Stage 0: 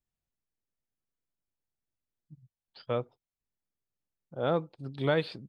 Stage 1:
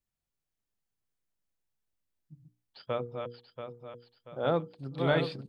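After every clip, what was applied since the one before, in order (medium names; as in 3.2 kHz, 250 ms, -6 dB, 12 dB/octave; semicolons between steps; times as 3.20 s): backward echo that repeats 342 ms, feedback 63%, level -5 dB; hum notches 60/120/180/240/300/360/420/480 Hz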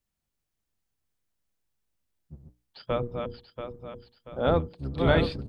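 octave divider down 1 oct, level 0 dB; trim +4 dB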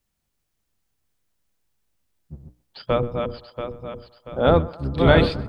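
band-passed feedback delay 128 ms, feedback 63%, band-pass 960 Hz, level -18 dB; trim +7 dB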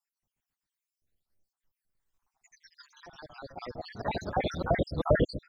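random holes in the spectrogram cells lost 83%; ever faster or slower copies 157 ms, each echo +2 st, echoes 3; trim -5.5 dB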